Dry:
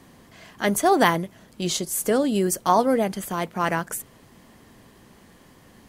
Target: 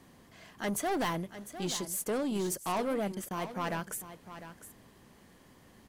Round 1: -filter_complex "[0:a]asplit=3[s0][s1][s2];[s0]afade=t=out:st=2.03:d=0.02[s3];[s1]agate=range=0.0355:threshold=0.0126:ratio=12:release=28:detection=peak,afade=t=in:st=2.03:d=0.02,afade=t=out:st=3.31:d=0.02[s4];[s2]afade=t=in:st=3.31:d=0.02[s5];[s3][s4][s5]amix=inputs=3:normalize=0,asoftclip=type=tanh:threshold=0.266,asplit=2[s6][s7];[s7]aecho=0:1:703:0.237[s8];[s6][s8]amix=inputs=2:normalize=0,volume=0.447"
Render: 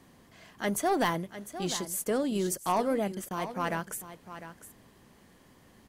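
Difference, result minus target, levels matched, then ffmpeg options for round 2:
saturation: distortion -8 dB
-filter_complex "[0:a]asplit=3[s0][s1][s2];[s0]afade=t=out:st=2.03:d=0.02[s3];[s1]agate=range=0.0355:threshold=0.0126:ratio=12:release=28:detection=peak,afade=t=in:st=2.03:d=0.02,afade=t=out:st=3.31:d=0.02[s4];[s2]afade=t=in:st=3.31:d=0.02[s5];[s3][s4][s5]amix=inputs=3:normalize=0,asoftclip=type=tanh:threshold=0.0944,asplit=2[s6][s7];[s7]aecho=0:1:703:0.237[s8];[s6][s8]amix=inputs=2:normalize=0,volume=0.447"

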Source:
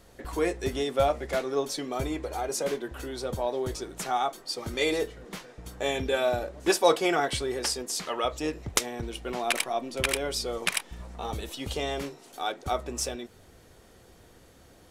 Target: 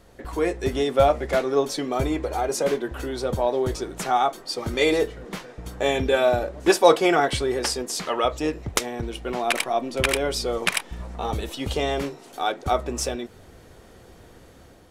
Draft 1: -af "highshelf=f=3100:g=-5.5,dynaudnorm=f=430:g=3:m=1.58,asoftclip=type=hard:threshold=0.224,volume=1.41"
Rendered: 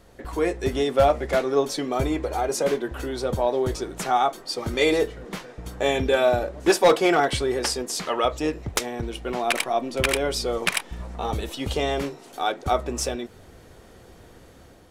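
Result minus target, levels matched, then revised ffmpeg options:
hard clipper: distortion +24 dB
-af "highshelf=f=3100:g=-5.5,dynaudnorm=f=430:g=3:m=1.58,asoftclip=type=hard:threshold=0.596,volume=1.41"

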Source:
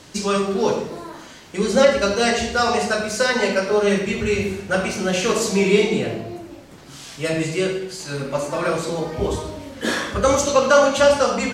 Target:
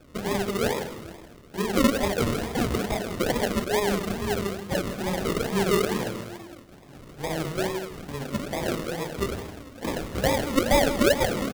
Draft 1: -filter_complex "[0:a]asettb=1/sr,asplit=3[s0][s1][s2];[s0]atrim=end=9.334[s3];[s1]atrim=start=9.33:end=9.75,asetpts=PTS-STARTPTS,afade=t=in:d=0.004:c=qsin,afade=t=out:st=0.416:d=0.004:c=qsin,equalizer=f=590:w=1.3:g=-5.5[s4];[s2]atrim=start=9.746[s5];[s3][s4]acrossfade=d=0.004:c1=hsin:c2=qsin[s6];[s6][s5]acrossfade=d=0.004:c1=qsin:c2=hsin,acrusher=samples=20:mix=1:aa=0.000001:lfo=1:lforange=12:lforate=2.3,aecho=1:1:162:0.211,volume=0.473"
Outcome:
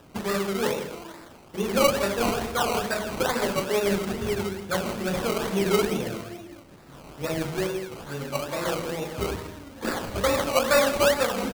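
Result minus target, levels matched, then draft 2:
decimation with a swept rate: distortion -13 dB
-filter_complex "[0:a]asettb=1/sr,asplit=3[s0][s1][s2];[s0]atrim=end=9.334[s3];[s1]atrim=start=9.33:end=9.75,asetpts=PTS-STARTPTS,afade=t=in:d=0.004:c=qsin,afade=t=out:st=0.416:d=0.004:c=qsin,equalizer=f=590:w=1.3:g=-5.5[s4];[s2]atrim=start=9.746[s5];[s3][s4]acrossfade=d=0.004:c1=hsin:c2=qsin[s6];[s6][s5]acrossfade=d=0.004:c1=qsin:c2=hsin,acrusher=samples=43:mix=1:aa=0.000001:lfo=1:lforange=25.8:lforate=2.3,aecho=1:1:162:0.211,volume=0.473"

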